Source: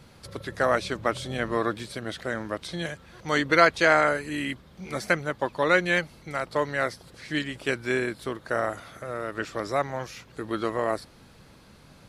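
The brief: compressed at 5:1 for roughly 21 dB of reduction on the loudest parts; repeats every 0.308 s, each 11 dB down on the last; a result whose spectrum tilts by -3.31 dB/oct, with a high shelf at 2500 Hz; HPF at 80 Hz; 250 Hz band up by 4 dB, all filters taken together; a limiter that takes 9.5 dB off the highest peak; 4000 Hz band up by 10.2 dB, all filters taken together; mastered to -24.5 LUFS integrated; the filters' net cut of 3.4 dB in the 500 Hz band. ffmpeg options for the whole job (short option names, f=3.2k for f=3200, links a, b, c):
-af "highpass=80,equalizer=f=250:t=o:g=8,equalizer=f=500:t=o:g=-7,highshelf=f=2.5k:g=8,equalizer=f=4k:t=o:g=6,acompressor=threshold=-36dB:ratio=5,alimiter=level_in=4dB:limit=-24dB:level=0:latency=1,volume=-4dB,aecho=1:1:308|616|924:0.282|0.0789|0.0221,volume=15.5dB"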